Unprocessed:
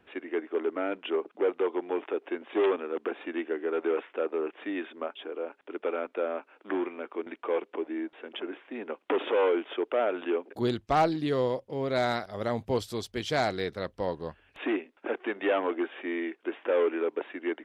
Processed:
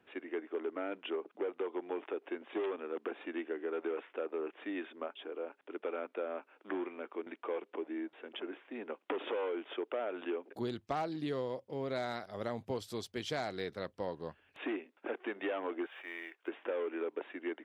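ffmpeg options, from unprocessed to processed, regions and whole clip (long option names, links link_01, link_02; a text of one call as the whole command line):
ffmpeg -i in.wav -filter_complex "[0:a]asettb=1/sr,asplit=3[link_01][link_02][link_03];[link_01]atrim=end=15.864[link_04];[link_02]atrim=start=15.86:end=16.48,asetpts=PTS-STARTPTS,afade=type=in:duration=0.004:curve=qsin,afade=type=out:start_time=0.616:duration=0.004:curve=qsin,highpass=780,acrusher=bits=8:mode=log:mix=0:aa=0.000001[link_05];[link_03]atrim=start=16.476[link_06];[link_04][link_05]acrossfade=duration=0.004:curve1=hsin:curve2=qsin[link_07];[link_07][link_06]acrossfade=duration=0.004:curve1=qsin:curve2=hsin,highpass=95,acompressor=threshold=-27dB:ratio=6,volume=-5.5dB" out.wav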